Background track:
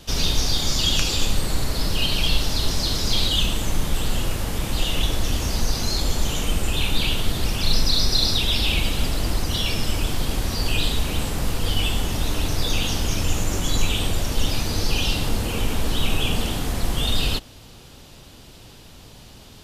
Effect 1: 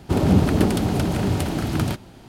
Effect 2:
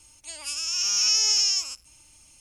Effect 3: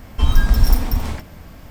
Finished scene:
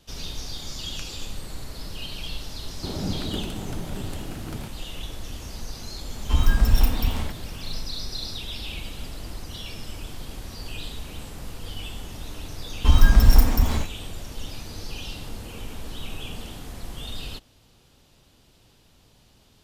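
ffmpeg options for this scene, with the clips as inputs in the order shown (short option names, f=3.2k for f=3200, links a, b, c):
-filter_complex "[3:a]asplit=2[a][b];[0:a]volume=-13dB[c];[b]agate=range=-16dB:threshold=-29dB:ratio=16:release=100:detection=peak[d];[1:a]atrim=end=2.28,asetpts=PTS-STARTPTS,volume=-13dB,afade=t=in:d=0.004:c=hsin,afade=t=out:st=2.276:d=0.004:c=hsin,adelay=2730[e];[a]atrim=end=1.7,asetpts=PTS-STARTPTS,volume=-4dB,afade=t=in:d=0.004:c=hsin,afade=t=out:st=1.696:d=0.004:c=hsin,adelay=6110[f];[d]atrim=end=1.7,asetpts=PTS-STARTPTS,afade=t=in:d=0.004:c=hsin,afade=t=out:st=1.696:d=0.004:c=hsin,adelay=12660[g];[c][e][f][g]amix=inputs=4:normalize=0"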